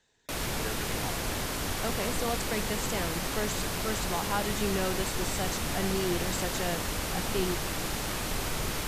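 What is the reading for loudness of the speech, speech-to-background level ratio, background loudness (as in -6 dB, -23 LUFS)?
-35.5 LUFS, -3.5 dB, -32.0 LUFS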